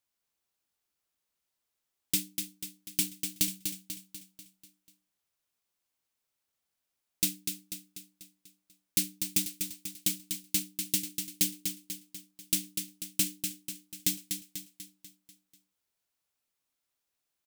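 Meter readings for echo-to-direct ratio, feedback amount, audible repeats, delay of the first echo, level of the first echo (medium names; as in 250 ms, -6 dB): -5.0 dB, 52%, 6, 245 ms, -6.5 dB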